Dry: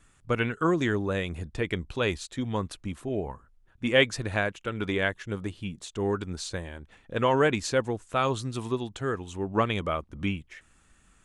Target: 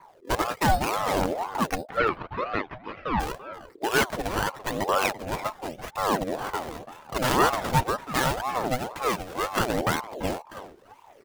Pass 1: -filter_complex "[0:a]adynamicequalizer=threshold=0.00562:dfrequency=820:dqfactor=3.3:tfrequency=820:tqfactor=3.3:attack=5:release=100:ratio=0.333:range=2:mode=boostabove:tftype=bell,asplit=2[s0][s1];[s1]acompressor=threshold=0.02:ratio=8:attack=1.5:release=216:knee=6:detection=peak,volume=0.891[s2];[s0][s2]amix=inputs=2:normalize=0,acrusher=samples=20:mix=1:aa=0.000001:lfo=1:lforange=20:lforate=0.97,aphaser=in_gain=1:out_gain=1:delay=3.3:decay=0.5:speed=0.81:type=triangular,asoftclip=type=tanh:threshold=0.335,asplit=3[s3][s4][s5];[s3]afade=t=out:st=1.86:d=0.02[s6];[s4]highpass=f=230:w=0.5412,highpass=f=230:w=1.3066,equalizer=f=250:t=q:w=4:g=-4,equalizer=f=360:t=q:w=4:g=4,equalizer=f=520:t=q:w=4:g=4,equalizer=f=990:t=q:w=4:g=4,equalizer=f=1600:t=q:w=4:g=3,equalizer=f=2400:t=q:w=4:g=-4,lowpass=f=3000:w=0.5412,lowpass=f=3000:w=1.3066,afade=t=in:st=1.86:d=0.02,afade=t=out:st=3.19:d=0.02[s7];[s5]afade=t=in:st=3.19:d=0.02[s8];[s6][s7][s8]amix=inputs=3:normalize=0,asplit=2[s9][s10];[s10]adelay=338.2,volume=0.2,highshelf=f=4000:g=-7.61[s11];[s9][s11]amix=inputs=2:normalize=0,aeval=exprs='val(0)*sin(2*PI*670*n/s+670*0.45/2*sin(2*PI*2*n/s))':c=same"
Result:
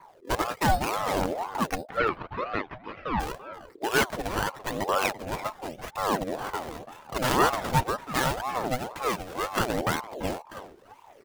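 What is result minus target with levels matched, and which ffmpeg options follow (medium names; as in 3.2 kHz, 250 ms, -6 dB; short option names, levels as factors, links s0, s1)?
compression: peak gain reduction +8.5 dB
-filter_complex "[0:a]adynamicequalizer=threshold=0.00562:dfrequency=820:dqfactor=3.3:tfrequency=820:tqfactor=3.3:attack=5:release=100:ratio=0.333:range=2:mode=boostabove:tftype=bell,asplit=2[s0][s1];[s1]acompressor=threshold=0.0596:ratio=8:attack=1.5:release=216:knee=6:detection=peak,volume=0.891[s2];[s0][s2]amix=inputs=2:normalize=0,acrusher=samples=20:mix=1:aa=0.000001:lfo=1:lforange=20:lforate=0.97,aphaser=in_gain=1:out_gain=1:delay=3.3:decay=0.5:speed=0.81:type=triangular,asoftclip=type=tanh:threshold=0.335,asplit=3[s3][s4][s5];[s3]afade=t=out:st=1.86:d=0.02[s6];[s4]highpass=f=230:w=0.5412,highpass=f=230:w=1.3066,equalizer=f=250:t=q:w=4:g=-4,equalizer=f=360:t=q:w=4:g=4,equalizer=f=520:t=q:w=4:g=4,equalizer=f=990:t=q:w=4:g=4,equalizer=f=1600:t=q:w=4:g=3,equalizer=f=2400:t=q:w=4:g=-4,lowpass=f=3000:w=0.5412,lowpass=f=3000:w=1.3066,afade=t=in:st=1.86:d=0.02,afade=t=out:st=3.19:d=0.02[s7];[s5]afade=t=in:st=3.19:d=0.02[s8];[s6][s7][s8]amix=inputs=3:normalize=0,asplit=2[s9][s10];[s10]adelay=338.2,volume=0.2,highshelf=f=4000:g=-7.61[s11];[s9][s11]amix=inputs=2:normalize=0,aeval=exprs='val(0)*sin(2*PI*670*n/s+670*0.45/2*sin(2*PI*2*n/s))':c=same"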